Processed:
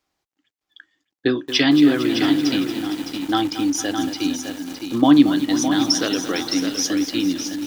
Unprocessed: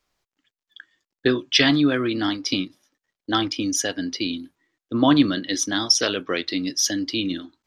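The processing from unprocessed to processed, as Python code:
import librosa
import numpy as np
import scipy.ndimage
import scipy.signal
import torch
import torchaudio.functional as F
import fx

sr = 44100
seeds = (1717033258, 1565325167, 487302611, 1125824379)

p1 = scipy.signal.sosfilt(scipy.signal.butter(2, 44.0, 'highpass', fs=sr, output='sos'), x)
p2 = fx.small_body(p1, sr, hz=(300.0, 780.0), ring_ms=45, db=8)
p3 = p2 + fx.echo_single(p2, sr, ms=612, db=-7.5, dry=0)
p4 = fx.echo_crushed(p3, sr, ms=228, feedback_pct=80, bits=5, wet_db=-11.0)
y = p4 * librosa.db_to_amplitude(-2.0)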